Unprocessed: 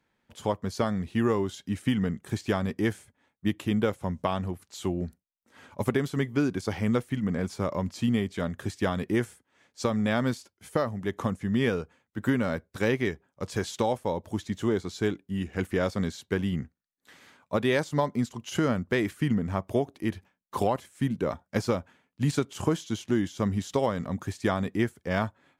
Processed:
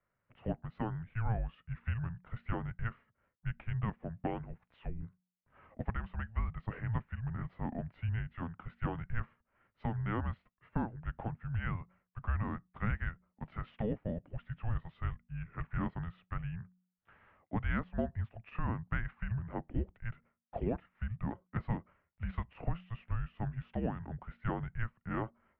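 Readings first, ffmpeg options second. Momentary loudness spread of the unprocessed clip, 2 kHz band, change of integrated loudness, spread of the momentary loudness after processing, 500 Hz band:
6 LU, −10.0 dB, −10.5 dB, 8 LU, −16.5 dB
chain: -af "bandreject=frequency=52.73:width_type=h:width=4,bandreject=frequency=105.46:width_type=h:width=4,bandreject=frequency=158.19:width_type=h:width=4,highpass=frequency=190:width_type=q:width=0.5412,highpass=frequency=190:width_type=q:width=1.307,lowpass=frequency=2700:width_type=q:width=0.5176,lowpass=frequency=2700:width_type=q:width=0.7071,lowpass=frequency=2700:width_type=q:width=1.932,afreqshift=-340,volume=-7.5dB"

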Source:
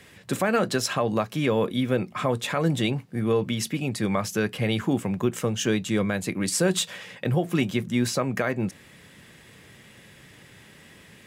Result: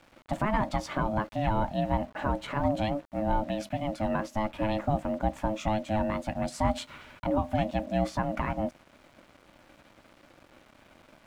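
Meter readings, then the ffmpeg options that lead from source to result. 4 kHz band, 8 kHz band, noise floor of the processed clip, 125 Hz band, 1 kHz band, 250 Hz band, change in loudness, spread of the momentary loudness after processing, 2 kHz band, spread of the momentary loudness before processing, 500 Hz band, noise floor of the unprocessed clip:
−12.0 dB, −17.5 dB, −60 dBFS, −5.5 dB, +2.5 dB, −5.5 dB, −4.5 dB, 5 LU, −7.5 dB, 4 LU, −5.0 dB, −51 dBFS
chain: -af "aeval=exprs='val(0)*sin(2*PI*430*n/s)':channel_layout=same,acrusher=bits=7:mix=0:aa=0.000001,lowpass=frequency=1300:poles=1"

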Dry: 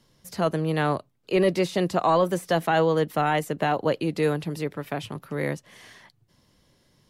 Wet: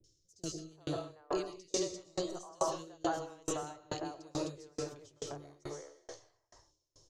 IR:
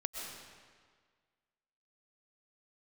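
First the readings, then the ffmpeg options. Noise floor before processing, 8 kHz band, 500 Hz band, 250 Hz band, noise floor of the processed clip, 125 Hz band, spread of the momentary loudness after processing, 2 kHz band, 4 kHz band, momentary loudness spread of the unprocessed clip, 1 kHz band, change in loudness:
−66 dBFS, +1.0 dB, −15.0 dB, −14.0 dB, −77 dBFS, −19.0 dB, 11 LU, −20.5 dB, −9.5 dB, 11 LU, −16.0 dB, −14.5 dB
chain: -filter_complex "[0:a]firequalizer=gain_entry='entry(100,0);entry(210,-22);entry(320,3);entry(1900,-15);entry(6400,12);entry(11000,-18)':delay=0.05:min_phase=1,acrossover=split=300|970|3200[link_01][link_02][link_03][link_04];[link_02]acompressor=threshold=-39dB:ratio=6[link_05];[link_01][link_05][link_03][link_04]amix=inputs=4:normalize=0,acrossover=split=400|2100[link_06][link_07][link_08];[link_08]adelay=40[link_09];[link_07]adelay=390[link_10];[link_06][link_10][link_09]amix=inputs=3:normalize=0[link_11];[1:a]atrim=start_sample=2205,afade=type=out:start_time=0.3:duration=0.01,atrim=end_sample=13671[link_12];[link_11][link_12]afir=irnorm=-1:irlink=0,aeval=exprs='val(0)*pow(10,-34*if(lt(mod(2.3*n/s,1),2*abs(2.3)/1000),1-mod(2.3*n/s,1)/(2*abs(2.3)/1000),(mod(2.3*n/s,1)-2*abs(2.3)/1000)/(1-2*abs(2.3)/1000))/20)':channel_layout=same,volume=3.5dB"

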